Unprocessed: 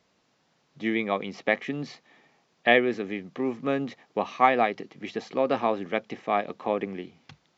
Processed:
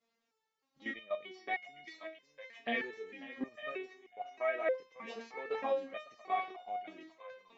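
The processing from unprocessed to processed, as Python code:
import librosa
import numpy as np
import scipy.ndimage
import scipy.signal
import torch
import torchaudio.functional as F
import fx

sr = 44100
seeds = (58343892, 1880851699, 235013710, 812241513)

y = fx.graphic_eq_10(x, sr, hz=(125, 250, 500, 1000, 2000, 4000), db=(-10, -7, 8, -7, 5, -10), at=(3.72, 4.73))
y = y + 10.0 ** (-16.5 / 20.0) * np.pad(y, (int(543 * sr / 1000.0), 0))[:len(y)]
y = fx.level_steps(y, sr, step_db=13)
y = fx.low_shelf(y, sr, hz=220.0, db=-7.5)
y = fx.echo_thinned(y, sr, ms=904, feedback_pct=32, hz=1200.0, wet_db=-7.0)
y = fx.resonator_held(y, sr, hz=3.2, low_hz=230.0, high_hz=720.0)
y = y * librosa.db_to_amplitude(8.5)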